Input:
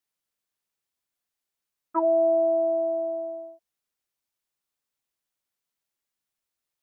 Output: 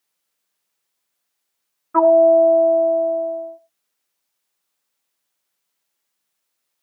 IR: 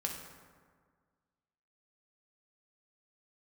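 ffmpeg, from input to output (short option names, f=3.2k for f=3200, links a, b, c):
-filter_complex "[0:a]highpass=f=250:p=1,asplit=2[a][b];[1:a]atrim=start_sample=2205,afade=t=out:st=0.16:d=0.01,atrim=end_sample=7497[c];[b][c]afir=irnorm=-1:irlink=0,volume=-6.5dB[d];[a][d]amix=inputs=2:normalize=0,volume=7dB"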